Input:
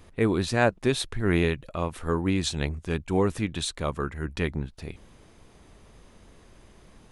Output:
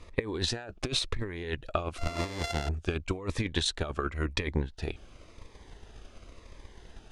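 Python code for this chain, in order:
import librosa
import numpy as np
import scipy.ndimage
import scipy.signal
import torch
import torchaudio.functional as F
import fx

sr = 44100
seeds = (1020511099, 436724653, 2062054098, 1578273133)

y = fx.sample_sort(x, sr, block=64, at=(1.98, 2.69))
y = scipy.signal.sosfilt(scipy.signal.butter(2, 6000.0, 'lowpass', fs=sr, output='sos'), y)
y = fx.peak_eq(y, sr, hz=170.0, db=-10.0, octaves=1.5)
y = fx.over_compress(y, sr, threshold_db=-33.0, ratio=-1.0)
y = fx.transient(y, sr, attack_db=8, sustain_db=-1)
y = fx.notch_cascade(y, sr, direction='falling', hz=0.94)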